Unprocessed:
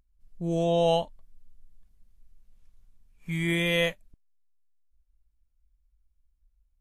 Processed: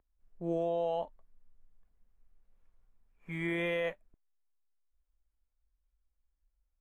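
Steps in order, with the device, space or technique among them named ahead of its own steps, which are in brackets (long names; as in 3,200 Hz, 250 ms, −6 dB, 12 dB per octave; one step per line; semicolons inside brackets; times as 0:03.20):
DJ mixer with the lows and highs turned down (three-way crossover with the lows and the highs turned down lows −17 dB, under 330 Hz, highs −18 dB, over 2,100 Hz; brickwall limiter −25.5 dBFS, peak gain reduction 10.5 dB)
low-shelf EQ 210 Hz +7 dB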